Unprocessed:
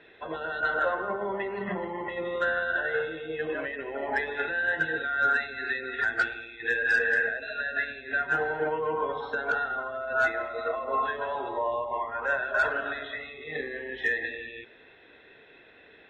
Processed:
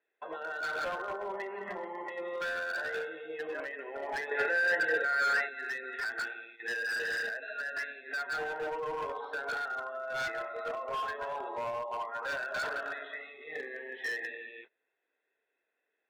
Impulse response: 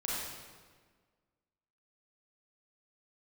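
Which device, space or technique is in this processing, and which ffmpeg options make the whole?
walkie-talkie: -filter_complex "[0:a]highpass=410,lowpass=2600,asoftclip=type=hard:threshold=0.0422,agate=range=0.0708:threshold=0.00447:ratio=16:detection=peak,asettb=1/sr,asplit=3[s0][s1][s2];[s0]atrim=end=4.314[s3];[s1]atrim=start=4.31:end=5.49,asetpts=PTS-STARTPTS,afade=t=in:d=0.004:c=qsin,afade=t=out:st=1.176:d=0.004:c=qsin,equalizer=f=125:t=o:w=1:g=5,equalizer=f=500:t=o:w=1:g=11,equalizer=f=2000:t=o:w=1:g=8[s4];[s2]atrim=start=5.486[s5];[s3][s4]acrossfade=d=0.004:c1=hsin:c2=qsin[s6];[s6][s5]acrossfade=d=0.004:c1=qsin:c2=hsin,volume=0.631"

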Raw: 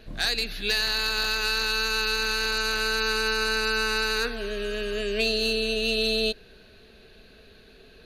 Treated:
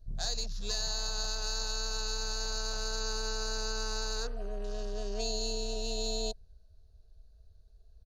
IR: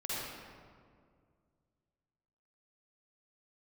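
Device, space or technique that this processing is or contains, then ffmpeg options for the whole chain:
smiley-face EQ: -af "lowpass=9100,lowshelf=f=140:g=6,equalizer=f=790:t=o:w=1.8:g=-8.5,highshelf=f=6700:g=7,afwtdn=0.0141,firequalizer=gain_entry='entry(160,0);entry(260,-13);entry(640,9);entry(1600,-11);entry(2300,-21);entry(5400,3);entry(13000,0)':delay=0.05:min_phase=1,volume=0.631"

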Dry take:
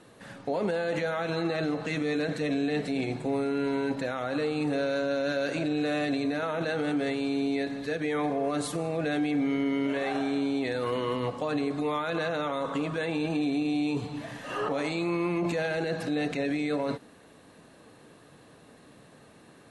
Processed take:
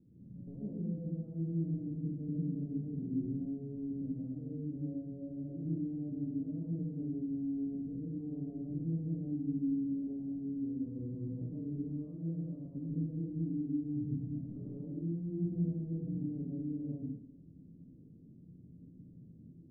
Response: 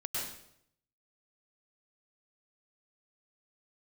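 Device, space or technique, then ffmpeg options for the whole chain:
club heard from the street: -filter_complex "[0:a]alimiter=level_in=1.12:limit=0.0631:level=0:latency=1:release=381,volume=0.891,lowpass=f=250:w=0.5412,lowpass=f=250:w=1.3066[s0];[1:a]atrim=start_sample=2205[s1];[s0][s1]afir=irnorm=-1:irlink=0"

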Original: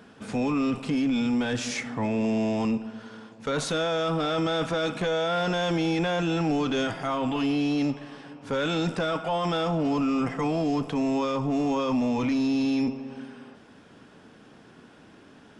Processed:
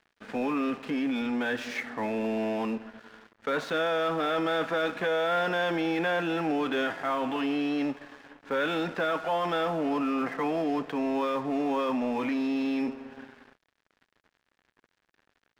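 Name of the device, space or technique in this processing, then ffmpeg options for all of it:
pocket radio on a weak battery: -af "highpass=280,lowpass=3100,aeval=exprs='sgn(val(0))*max(abs(val(0))-0.00398,0)':c=same,equalizer=f=1700:t=o:w=0.41:g=6"

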